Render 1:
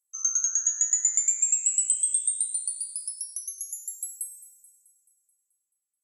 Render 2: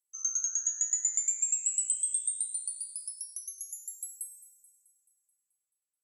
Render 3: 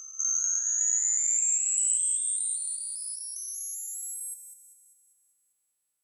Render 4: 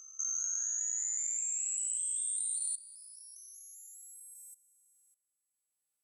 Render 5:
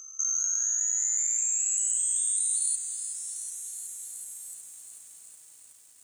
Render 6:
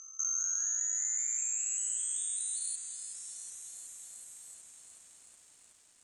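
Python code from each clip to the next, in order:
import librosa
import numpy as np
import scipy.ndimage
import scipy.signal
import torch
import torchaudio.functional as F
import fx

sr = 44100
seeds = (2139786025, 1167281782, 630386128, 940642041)

y1 = fx.highpass(x, sr, hz=1300.0, slope=6)
y1 = F.gain(torch.from_numpy(y1), -5.5).numpy()
y2 = fx.spec_steps(y1, sr, hold_ms=200)
y2 = F.gain(torch.from_numpy(y2), 9.0).numpy()
y3 = fx.level_steps(y2, sr, step_db=17)
y3 = F.gain(torch.from_numpy(y3), -1.0).numpy()
y4 = fx.echo_crushed(y3, sr, ms=371, feedback_pct=80, bits=10, wet_db=-11)
y4 = F.gain(torch.from_numpy(y4), 7.0).numpy()
y5 = fx.air_absorb(y4, sr, metres=71.0)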